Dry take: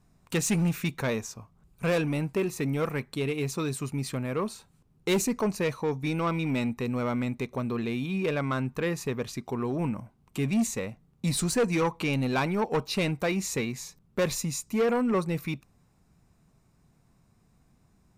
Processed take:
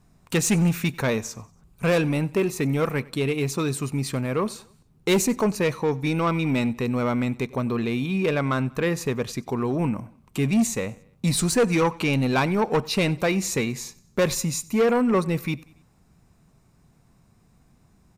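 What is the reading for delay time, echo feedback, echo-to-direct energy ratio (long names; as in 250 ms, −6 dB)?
94 ms, 48%, −22.0 dB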